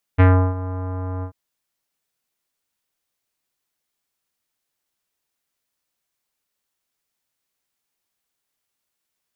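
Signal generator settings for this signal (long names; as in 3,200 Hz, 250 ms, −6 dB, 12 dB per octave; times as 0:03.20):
subtractive voice square F#2 24 dB per octave, low-pass 1,200 Hz, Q 1.3, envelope 1 octave, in 0.20 s, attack 22 ms, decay 0.34 s, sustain −16.5 dB, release 0.09 s, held 1.05 s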